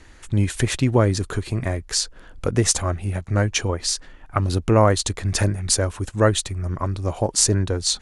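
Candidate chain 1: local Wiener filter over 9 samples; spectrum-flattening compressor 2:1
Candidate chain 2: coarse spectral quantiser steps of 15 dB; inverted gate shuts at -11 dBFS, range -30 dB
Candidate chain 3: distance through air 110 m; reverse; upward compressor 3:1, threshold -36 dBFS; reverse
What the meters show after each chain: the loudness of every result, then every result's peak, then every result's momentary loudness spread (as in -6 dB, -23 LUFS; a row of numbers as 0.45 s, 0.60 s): -25.5 LUFS, -29.5 LUFS, -23.0 LUFS; -2.0 dBFS, -7.5 dBFS, -4.5 dBFS; 8 LU, 10 LU, 9 LU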